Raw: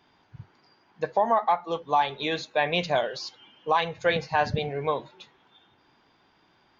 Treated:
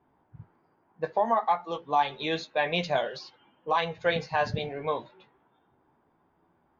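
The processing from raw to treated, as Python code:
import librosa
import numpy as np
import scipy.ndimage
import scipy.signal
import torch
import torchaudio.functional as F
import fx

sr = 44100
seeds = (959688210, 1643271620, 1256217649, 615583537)

y = fx.chorus_voices(x, sr, voices=2, hz=0.31, base_ms=15, depth_ms=3.3, mix_pct=30)
y = fx.env_lowpass(y, sr, base_hz=980.0, full_db=-24.5)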